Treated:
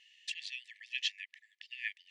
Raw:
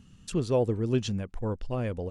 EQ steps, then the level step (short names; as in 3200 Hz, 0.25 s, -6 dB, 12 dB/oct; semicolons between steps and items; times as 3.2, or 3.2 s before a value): brick-wall FIR high-pass 1700 Hz; LPF 2800 Hz 12 dB/oct; +10.5 dB